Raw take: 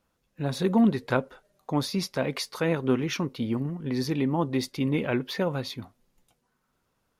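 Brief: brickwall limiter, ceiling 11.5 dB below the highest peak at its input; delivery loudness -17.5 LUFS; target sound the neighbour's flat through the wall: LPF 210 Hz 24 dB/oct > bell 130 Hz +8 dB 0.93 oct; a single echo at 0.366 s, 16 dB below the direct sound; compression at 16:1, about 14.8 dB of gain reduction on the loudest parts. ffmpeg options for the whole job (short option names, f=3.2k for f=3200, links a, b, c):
-af "acompressor=threshold=-32dB:ratio=16,alimiter=level_in=7.5dB:limit=-24dB:level=0:latency=1,volume=-7.5dB,lowpass=f=210:w=0.5412,lowpass=f=210:w=1.3066,equalizer=f=130:t=o:w=0.93:g=8,aecho=1:1:366:0.158,volume=23dB"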